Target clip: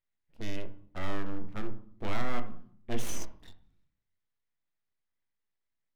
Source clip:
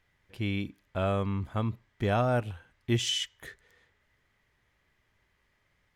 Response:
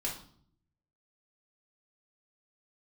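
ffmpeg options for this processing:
-filter_complex "[0:a]afwtdn=0.00708,aeval=exprs='abs(val(0))':c=same,asplit=2[s0][s1];[1:a]atrim=start_sample=2205,lowpass=2100,adelay=20[s2];[s1][s2]afir=irnorm=-1:irlink=0,volume=0.376[s3];[s0][s3]amix=inputs=2:normalize=0,volume=0.562"

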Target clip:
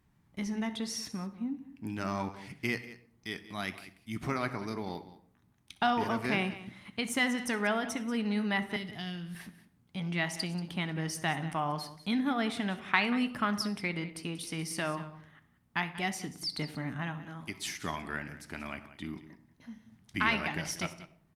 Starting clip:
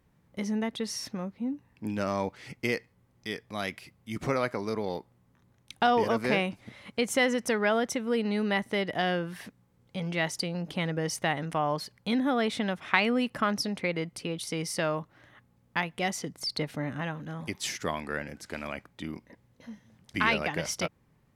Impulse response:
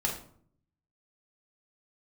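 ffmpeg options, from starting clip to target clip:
-filter_complex "[0:a]asettb=1/sr,asplit=3[s0][s1][s2];[s0]atrim=end=17.144[s3];[s1]atrim=start=17.14:end=17.58,asetpts=PTS-STARTPTS,afade=t=in:d=0.004:c=qsin,afade=t=out:st=0.436:d=0.004:c=qsin,lowshelf=f=290:g=-5.5[s4];[s2]atrim=start=17.576[s5];[s3][s4]acrossfade=d=0.004:c1=hsin:c2=qsin[s6];[s6][s5]acrossfade=d=0.004:c1=qsin:c2=hsin,asplit=2[s7][s8];[s8]adelay=96,lowpass=f=1300:p=1,volume=0.0891,asplit=2[s9][s10];[s10]adelay=96,lowpass=f=1300:p=1,volume=0.5,asplit=2[s11][s12];[s12]adelay=96,lowpass=f=1300:p=1,volume=0.5,asplit=2[s13][s14];[s14]adelay=96,lowpass=f=1300:p=1,volume=0.5[s15];[s9][s11][s13][s15]amix=inputs=4:normalize=0[s16];[s7][s16]amix=inputs=2:normalize=0,asettb=1/sr,asplit=3[s17][s18][s19];[s17]atrim=end=8.764[s20];[s18]atrim=start=8.76:end=9.35,asetpts=PTS-STARTPTS,afade=t=in:d=0.004:c=qsin,afade=t=out:st=0.586:d=0.004:c=qsin,acrossover=split=200|3000[s21][s22][s23];[s22]acompressor=threshold=0.00355:ratio=2.5[s24];[s21][s24][s23]amix=inputs=3:normalize=0[s25];[s19]atrim=start=9.346[s26];[s20][s25]acrossfade=d=0.004:c1=hsin:c2=qsin[s27];[s27][s26]acrossfade=d=0.004:c1=qsin:c2=hsin,equalizer=f=510:t=o:w=0.42:g=-13.5,aecho=1:1:186:0.168,asplit=2[s28][s29];[1:a]atrim=start_sample=2205,adelay=62[s30];[s29][s30]afir=irnorm=-1:irlink=0,volume=0.0841[s31];[s28][s31]amix=inputs=2:normalize=0,flanger=delay=9.1:depth=3.3:regen=-78:speed=0.74:shape=triangular,volume=1.33" -ar 48000 -c:a libopus -b:a 48k

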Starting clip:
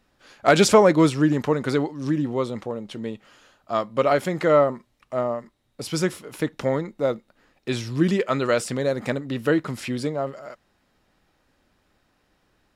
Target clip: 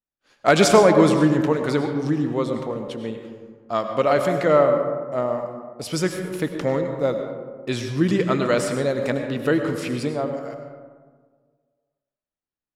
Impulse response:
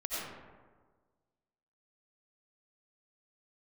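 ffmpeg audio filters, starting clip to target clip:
-filter_complex "[0:a]agate=range=0.0224:threshold=0.00794:ratio=3:detection=peak,asplit=2[s0][s1];[1:a]atrim=start_sample=2205,asetrate=39249,aresample=44100[s2];[s1][s2]afir=irnorm=-1:irlink=0,volume=0.422[s3];[s0][s3]amix=inputs=2:normalize=0,volume=0.794"

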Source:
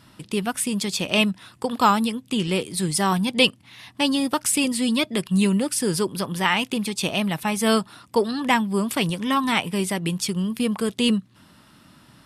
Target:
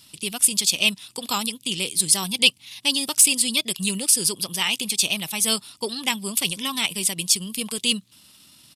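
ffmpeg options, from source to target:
-af "atempo=1.4,aexciter=amount=6.6:drive=4.3:freq=2400,volume=0.355"

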